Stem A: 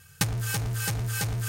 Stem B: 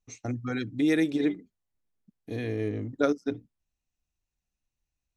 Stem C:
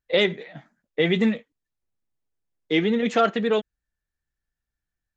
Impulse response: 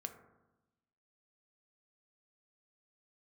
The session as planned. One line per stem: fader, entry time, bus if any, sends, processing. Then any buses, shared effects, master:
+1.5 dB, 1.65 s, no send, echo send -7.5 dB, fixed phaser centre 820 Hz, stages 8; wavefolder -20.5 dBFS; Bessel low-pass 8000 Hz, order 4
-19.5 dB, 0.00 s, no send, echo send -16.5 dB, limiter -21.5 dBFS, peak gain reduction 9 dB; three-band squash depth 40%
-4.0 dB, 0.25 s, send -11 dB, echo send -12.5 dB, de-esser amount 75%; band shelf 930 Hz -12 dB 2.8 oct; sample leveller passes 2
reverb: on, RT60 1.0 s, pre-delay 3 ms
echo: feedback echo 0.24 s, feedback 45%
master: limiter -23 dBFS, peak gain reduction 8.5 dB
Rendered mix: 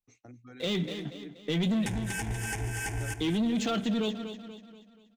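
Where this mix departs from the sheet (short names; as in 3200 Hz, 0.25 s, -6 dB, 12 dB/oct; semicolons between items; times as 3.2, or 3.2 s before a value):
stem B: missing limiter -21.5 dBFS, peak gain reduction 9 dB; stem C: entry 0.25 s -> 0.50 s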